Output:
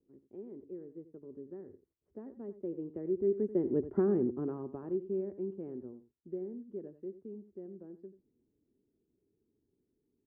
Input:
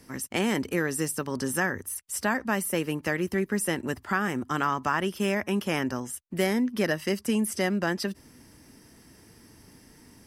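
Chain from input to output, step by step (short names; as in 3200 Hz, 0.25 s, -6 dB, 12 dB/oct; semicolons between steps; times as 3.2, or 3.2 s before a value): Doppler pass-by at 3.98, 12 m/s, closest 2.9 m; synth low-pass 390 Hz, resonance Q 4.8; echo 88 ms -14 dB; gain -3 dB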